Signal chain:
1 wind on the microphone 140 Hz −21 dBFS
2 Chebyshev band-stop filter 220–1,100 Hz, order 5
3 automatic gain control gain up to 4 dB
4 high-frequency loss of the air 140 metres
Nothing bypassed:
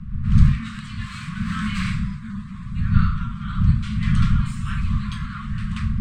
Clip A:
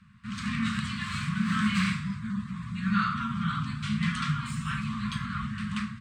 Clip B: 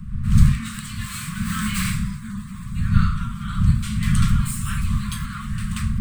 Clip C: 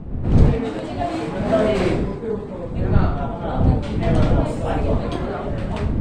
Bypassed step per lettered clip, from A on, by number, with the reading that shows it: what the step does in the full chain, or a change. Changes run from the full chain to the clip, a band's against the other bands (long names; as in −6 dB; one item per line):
1, 125 Hz band −12.0 dB
4, 4 kHz band +3.0 dB
2, 1 kHz band +8.0 dB